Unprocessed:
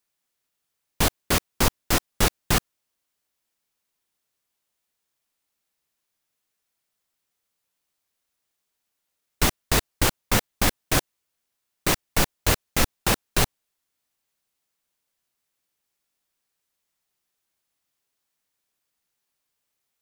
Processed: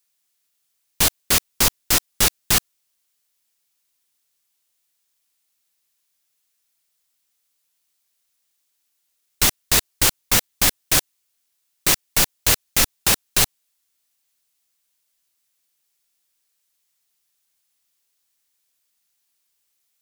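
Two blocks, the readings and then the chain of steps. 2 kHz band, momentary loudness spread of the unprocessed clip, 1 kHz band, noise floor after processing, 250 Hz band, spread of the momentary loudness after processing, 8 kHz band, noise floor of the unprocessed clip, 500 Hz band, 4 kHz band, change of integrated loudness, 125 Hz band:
+2.5 dB, 3 LU, -0.5 dB, -72 dBFS, -3.0 dB, 3 LU, +8.0 dB, -80 dBFS, -2.5 dB, +6.0 dB, +6.0 dB, -3.0 dB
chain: high shelf 2100 Hz +12 dB; gain -3 dB

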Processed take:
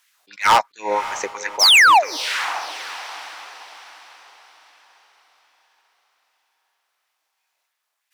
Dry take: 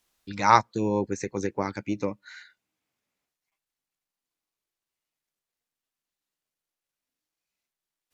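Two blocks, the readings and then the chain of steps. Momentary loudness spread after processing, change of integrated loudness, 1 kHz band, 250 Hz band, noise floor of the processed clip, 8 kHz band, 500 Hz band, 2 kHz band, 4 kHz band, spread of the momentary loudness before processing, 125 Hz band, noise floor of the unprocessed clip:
21 LU, +10.5 dB, +8.5 dB, -11.0 dB, -76 dBFS, n/a, +3.0 dB, +18.0 dB, +25.5 dB, 13 LU, under -10 dB, under -85 dBFS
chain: dynamic EQ 2600 Hz, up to +6 dB, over -40 dBFS, Q 1.4; in parallel at -0.5 dB: compressor, threshold -30 dBFS, peak gain reduction 18.5 dB; on the sum: painted sound fall, 1.59–2.17, 270–6400 Hz -15 dBFS; LFO high-pass sine 3 Hz 640–2000 Hz; overloaded stage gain 13 dB; on a send: diffused feedback echo 0.587 s, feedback 43%, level -13.5 dB; on the sum: attack slew limiter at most 330 dB/s; gain +4 dB

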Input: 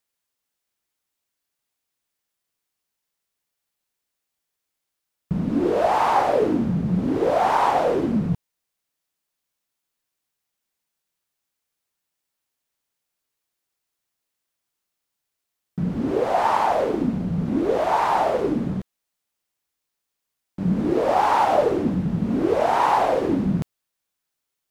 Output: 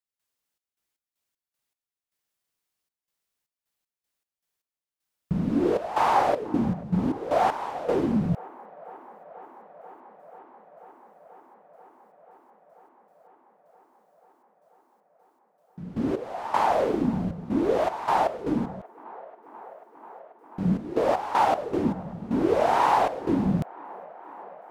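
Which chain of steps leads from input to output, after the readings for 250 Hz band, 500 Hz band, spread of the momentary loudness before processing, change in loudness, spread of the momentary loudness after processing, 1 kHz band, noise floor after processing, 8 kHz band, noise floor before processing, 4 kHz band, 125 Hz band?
-3.5 dB, -4.5 dB, 9 LU, -4.0 dB, 21 LU, -4.0 dB, under -85 dBFS, -4.0 dB, -82 dBFS, -4.0 dB, -4.0 dB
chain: step gate ".xx.x.x.x..xxxx" 78 bpm -12 dB; on a send: band-limited delay 0.487 s, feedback 84%, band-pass 920 Hz, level -20 dB; on the sum: gain -2 dB

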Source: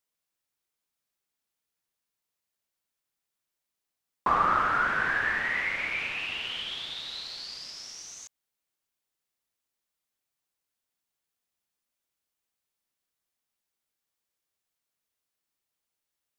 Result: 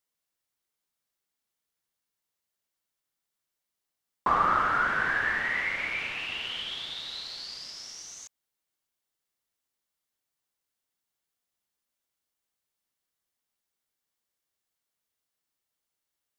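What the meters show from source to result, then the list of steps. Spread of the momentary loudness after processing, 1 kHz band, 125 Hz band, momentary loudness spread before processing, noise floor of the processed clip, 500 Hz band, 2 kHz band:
16 LU, 0.0 dB, 0.0 dB, 16 LU, under -85 dBFS, 0.0 dB, 0.0 dB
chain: notch 2500 Hz, Q 21

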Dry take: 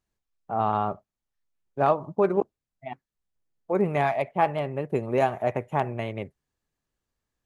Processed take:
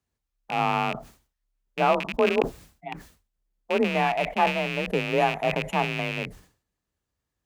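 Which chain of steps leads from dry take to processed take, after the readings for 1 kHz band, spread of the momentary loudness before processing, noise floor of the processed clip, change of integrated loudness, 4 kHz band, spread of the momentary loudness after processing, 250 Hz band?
+1.0 dB, 17 LU, -84 dBFS, +1.5 dB, +14.0 dB, 16 LU, +1.0 dB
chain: rattling part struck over -39 dBFS, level -19 dBFS; frequency shift +34 Hz; sustainer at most 130 dB/s

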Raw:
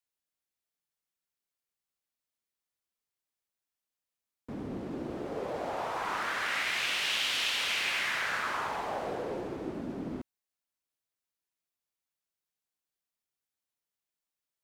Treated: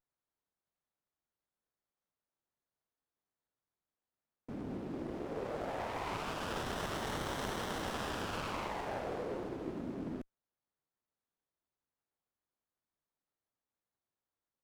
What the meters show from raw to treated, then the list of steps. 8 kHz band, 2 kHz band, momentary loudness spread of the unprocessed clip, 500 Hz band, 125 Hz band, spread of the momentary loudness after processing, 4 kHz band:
-8.5 dB, -12.5 dB, 11 LU, -2.0 dB, +2.0 dB, 5 LU, -13.5 dB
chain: running maximum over 17 samples; gain -3 dB

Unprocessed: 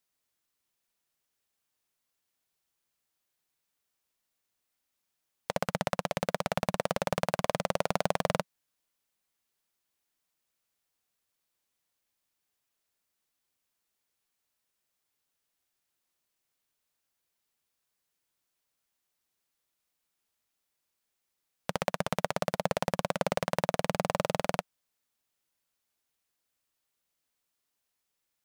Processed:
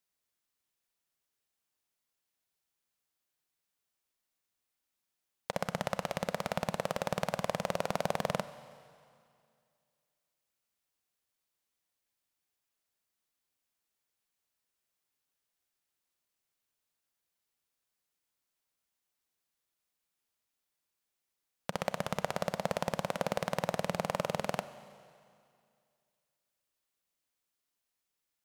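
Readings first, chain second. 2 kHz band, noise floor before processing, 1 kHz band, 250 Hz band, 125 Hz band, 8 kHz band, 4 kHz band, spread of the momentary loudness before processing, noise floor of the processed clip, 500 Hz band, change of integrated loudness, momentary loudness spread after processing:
-3.5 dB, -83 dBFS, -3.5 dB, -3.5 dB, -3.5 dB, -3.5 dB, -3.5 dB, 5 LU, under -85 dBFS, -3.5 dB, -3.5 dB, 7 LU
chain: Schroeder reverb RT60 2.3 s, combs from 31 ms, DRR 13.5 dB; gain -3.5 dB

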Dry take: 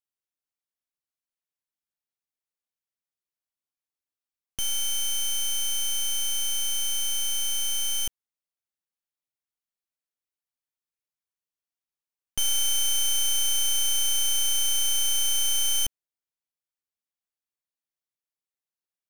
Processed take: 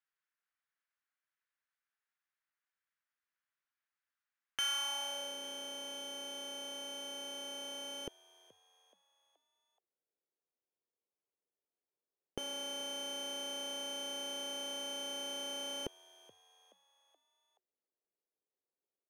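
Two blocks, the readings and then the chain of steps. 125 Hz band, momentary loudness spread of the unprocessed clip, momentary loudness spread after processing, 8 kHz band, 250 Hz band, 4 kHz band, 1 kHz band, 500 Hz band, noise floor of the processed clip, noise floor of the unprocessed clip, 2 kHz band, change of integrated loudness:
n/a, 5 LU, 7 LU, -20.0 dB, +2.5 dB, -12.5 dB, -0.5 dB, +6.5 dB, under -85 dBFS, under -85 dBFS, -7.0 dB, -15.5 dB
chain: band-pass sweep 1600 Hz -> 430 Hz, 4.58–5.38; frequency-shifting echo 0.426 s, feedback 51%, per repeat +89 Hz, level -21.5 dB; gain +11 dB

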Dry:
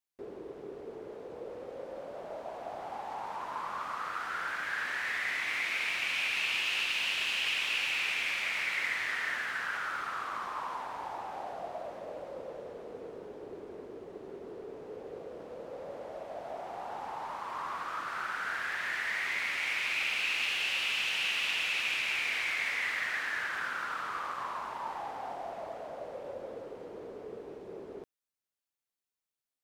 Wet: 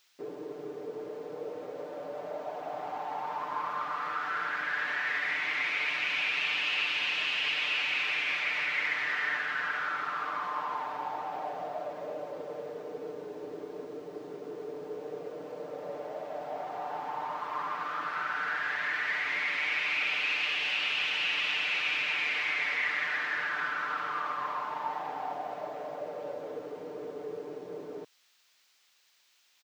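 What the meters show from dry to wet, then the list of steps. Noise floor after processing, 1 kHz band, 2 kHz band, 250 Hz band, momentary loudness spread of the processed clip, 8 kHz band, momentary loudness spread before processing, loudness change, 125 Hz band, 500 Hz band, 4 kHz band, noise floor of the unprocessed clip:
-67 dBFS, +3.5 dB, +2.0 dB, +3.5 dB, 13 LU, -7.5 dB, 16 LU, +1.5 dB, +2.0 dB, +3.5 dB, +1.0 dB, under -85 dBFS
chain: HPF 150 Hz 12 dB/oct; high shelf 8400 Hz +9.5 dB; comb 6.7 ms, depth 98%; added noise violet -47 dBFS; soft clip -17 dBFS, distortion -27 dB; air absorption 200 m; gain +1.5 dB

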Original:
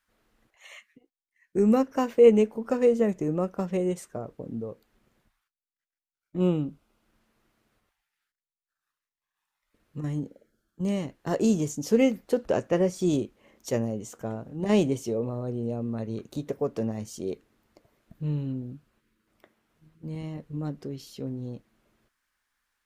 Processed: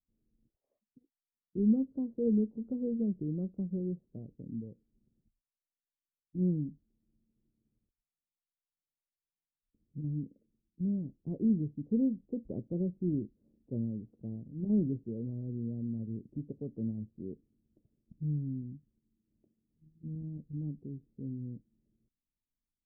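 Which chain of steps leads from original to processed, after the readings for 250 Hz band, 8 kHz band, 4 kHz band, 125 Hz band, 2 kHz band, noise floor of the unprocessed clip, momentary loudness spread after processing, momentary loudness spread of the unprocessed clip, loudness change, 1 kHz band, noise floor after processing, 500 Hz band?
-5.0 dB, under -35 dB, under -35 dB, -4.0 dB, under -40 dB, under -85 dBFS, 15 LU, 15 LU, -8.0 dB, under -30 dB, under -85 dBFS, -16.5 dB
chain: ladder low-pass 340 Hz, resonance 20%

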